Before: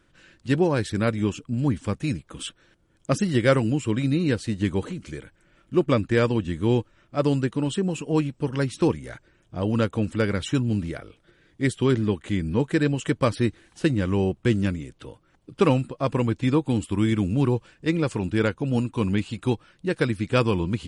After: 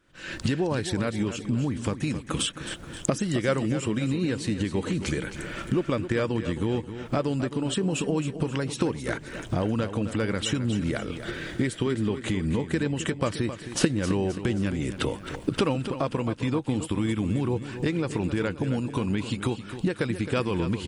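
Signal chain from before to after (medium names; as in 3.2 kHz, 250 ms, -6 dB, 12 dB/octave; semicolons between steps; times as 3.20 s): recorder AGC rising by 79 dB/s; bass shelf 160 Hz -4.5 dB; feedback delay 265 ms, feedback 46%, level -11 dB; trim -5.5 dB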